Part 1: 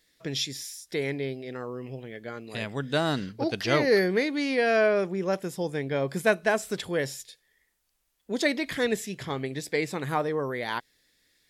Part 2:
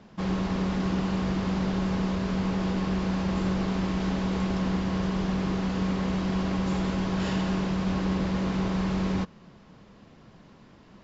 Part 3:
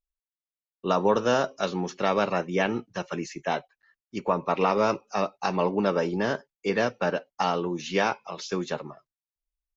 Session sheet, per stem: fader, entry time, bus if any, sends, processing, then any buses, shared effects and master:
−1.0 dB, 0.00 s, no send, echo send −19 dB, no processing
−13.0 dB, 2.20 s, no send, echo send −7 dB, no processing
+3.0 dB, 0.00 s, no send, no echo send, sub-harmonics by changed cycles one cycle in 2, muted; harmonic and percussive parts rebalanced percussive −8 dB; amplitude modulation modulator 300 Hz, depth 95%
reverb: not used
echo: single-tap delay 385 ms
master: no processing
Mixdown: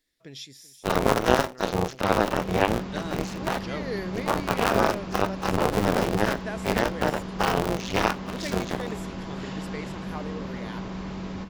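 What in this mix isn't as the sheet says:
stem 1 −1.0 dB → −11.0 dB
stem 2 −13.0 dB → −6.5 dB
stem 3 +3.0 dB → +12.0 dB

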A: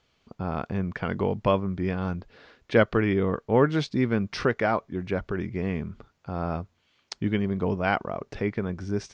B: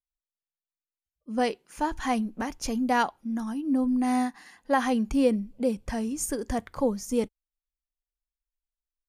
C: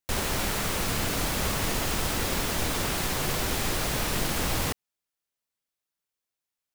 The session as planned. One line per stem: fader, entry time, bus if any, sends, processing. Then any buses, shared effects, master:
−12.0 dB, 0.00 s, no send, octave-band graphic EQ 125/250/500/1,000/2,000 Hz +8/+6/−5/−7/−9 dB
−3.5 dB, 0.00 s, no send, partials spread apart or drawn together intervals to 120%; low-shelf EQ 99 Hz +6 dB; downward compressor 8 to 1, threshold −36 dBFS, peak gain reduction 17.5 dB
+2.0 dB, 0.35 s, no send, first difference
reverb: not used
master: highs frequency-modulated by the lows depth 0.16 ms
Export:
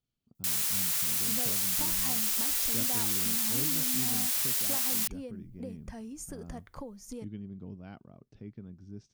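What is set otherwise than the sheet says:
stem A −12.0 dB → −21.0 dB
stem B: missing partials spread apart or drawn together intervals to 120%
master: missing highs frequency-modulated by the lows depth 0.16 ms

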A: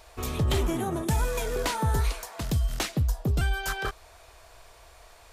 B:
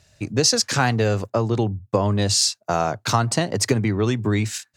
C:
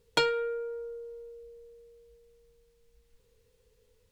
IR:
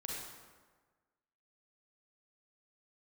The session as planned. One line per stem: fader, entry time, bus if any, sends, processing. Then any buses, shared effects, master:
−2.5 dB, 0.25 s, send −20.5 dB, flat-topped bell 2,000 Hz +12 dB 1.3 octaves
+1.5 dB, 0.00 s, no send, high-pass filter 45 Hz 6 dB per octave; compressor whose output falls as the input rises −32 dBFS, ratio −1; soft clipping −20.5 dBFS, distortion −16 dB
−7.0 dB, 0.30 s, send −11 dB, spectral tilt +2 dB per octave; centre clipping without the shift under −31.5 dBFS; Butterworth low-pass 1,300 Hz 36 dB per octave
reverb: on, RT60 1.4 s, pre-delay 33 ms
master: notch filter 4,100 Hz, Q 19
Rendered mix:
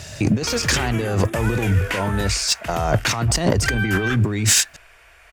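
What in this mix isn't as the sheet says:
stem B +1.5 dB → +12.0 dB
stem C: missing Butterworth low-pass 1,300 Hz 36 dB per octave

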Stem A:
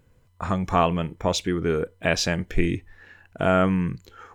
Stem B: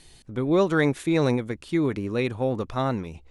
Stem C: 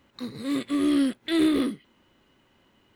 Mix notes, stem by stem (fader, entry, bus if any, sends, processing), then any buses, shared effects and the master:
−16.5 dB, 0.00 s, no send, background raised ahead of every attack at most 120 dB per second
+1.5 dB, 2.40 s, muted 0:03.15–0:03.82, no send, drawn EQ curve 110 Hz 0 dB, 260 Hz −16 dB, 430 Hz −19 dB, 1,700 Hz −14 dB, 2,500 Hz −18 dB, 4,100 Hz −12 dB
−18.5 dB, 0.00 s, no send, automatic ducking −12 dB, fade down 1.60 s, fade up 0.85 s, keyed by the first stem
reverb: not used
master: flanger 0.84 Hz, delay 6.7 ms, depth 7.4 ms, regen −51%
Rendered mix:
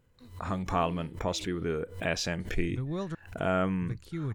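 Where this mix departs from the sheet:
stem A −16.5 dB → −8.0 dB
master: missing flanger 0.84 Hz, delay 6.7 ms, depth 7.4 ms, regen −51%

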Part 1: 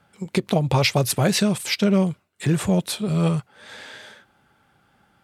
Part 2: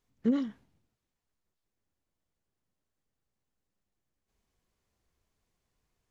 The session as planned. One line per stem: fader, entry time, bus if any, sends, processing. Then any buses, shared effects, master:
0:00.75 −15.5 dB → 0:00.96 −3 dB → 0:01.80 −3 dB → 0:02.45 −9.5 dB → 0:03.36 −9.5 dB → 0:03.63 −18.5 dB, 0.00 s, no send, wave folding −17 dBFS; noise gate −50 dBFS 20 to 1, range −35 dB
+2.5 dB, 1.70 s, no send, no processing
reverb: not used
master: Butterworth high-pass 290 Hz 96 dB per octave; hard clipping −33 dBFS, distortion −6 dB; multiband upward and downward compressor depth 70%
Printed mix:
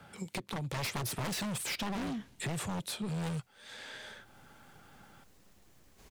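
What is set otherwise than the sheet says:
stem 1: missing noise gate −50 dBFS 20 to 1, range −35 dB
master: missing Butterworth high-pass 290 Hz 96 dB per octave

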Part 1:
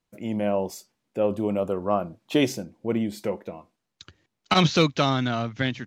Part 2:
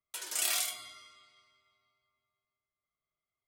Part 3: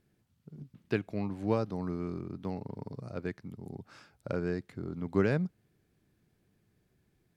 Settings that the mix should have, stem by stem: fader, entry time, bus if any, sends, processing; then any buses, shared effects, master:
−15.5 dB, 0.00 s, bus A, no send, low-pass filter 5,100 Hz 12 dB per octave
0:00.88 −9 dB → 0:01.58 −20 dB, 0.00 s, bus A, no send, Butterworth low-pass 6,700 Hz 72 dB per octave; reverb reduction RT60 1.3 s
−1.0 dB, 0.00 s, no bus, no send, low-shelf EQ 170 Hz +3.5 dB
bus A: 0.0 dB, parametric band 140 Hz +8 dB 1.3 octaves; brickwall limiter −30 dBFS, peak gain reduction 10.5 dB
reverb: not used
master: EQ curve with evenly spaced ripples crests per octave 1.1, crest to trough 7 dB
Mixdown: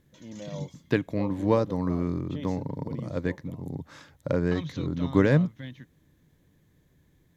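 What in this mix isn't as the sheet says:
stem 2 −9.0 dB → −15.5 dB
stem 3 −1.0 dB → +6.0 dB

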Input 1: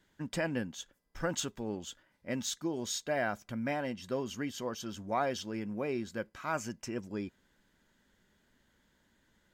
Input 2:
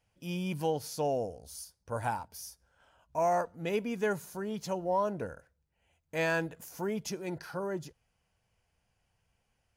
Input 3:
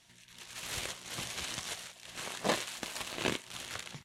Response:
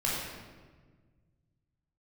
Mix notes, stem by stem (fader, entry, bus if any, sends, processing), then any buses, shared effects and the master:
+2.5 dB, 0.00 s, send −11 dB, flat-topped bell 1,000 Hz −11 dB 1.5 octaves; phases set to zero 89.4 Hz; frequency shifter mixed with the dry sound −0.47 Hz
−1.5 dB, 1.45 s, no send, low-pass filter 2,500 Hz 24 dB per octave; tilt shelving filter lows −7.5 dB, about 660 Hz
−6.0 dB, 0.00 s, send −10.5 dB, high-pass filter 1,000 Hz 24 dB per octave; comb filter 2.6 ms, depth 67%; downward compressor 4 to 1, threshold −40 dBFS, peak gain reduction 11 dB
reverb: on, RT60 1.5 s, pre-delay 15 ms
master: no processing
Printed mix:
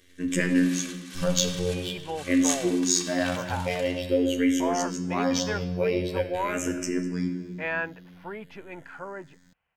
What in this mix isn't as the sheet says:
stem 1 +2.5 dB → +13.0 dB
stem 3: missing downward compressor 4 to 1, threshold −40 dBFS, peak gain reduction 11 dB

